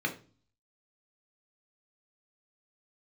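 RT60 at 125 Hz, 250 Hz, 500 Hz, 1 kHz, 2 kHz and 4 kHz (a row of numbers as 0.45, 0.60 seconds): 0.70, 0.60, 0.40, 0.35, 0.30, 0.40 seconds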